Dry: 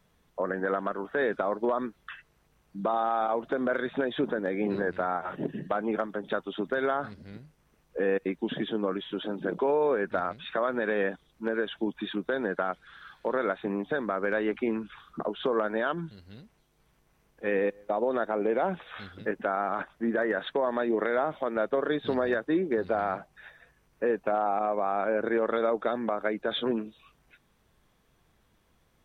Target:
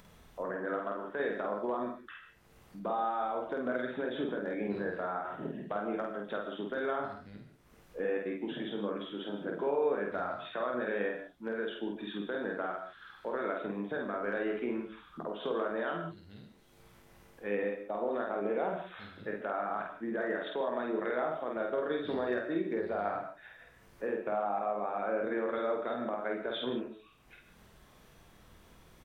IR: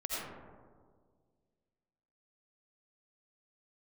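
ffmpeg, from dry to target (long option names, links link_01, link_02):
-filter_complex "[0:a]acompressor=mode=upward:threshold=-38dB:ratio=2.5,asplit=2[link_01][link_02];[link_02]adelay=49,volume=-2.5dB[link_03];[link_01][link_03]amix=inputs=2:normalize=0,asplit=2[link_04][link_05];[1:a]atrim=start_sample=2205,afade=type=out:start_time=0.18:duration=0.01,atrim=end_sample=8379,adelay=24[link_06];[link_05][link_06]afir=irnorm=-1:irlink=0,volume=-8.5dB[link_07];[link_04][link_07]amix=inputs=2:normalize=0,volume=-8.5dB"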